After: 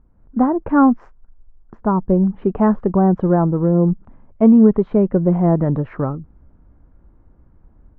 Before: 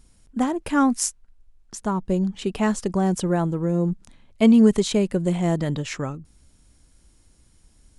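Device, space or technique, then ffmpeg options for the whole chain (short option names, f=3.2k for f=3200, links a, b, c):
action camera in a waterproof case: -af "lowpass=f=1.3k:w=0.5412,lowpass=f=1.3k:w=1.3066,dynaudnorm=f=130:g=3:m=7.5dB" -ar 32000 -c:a aac -b:a 64k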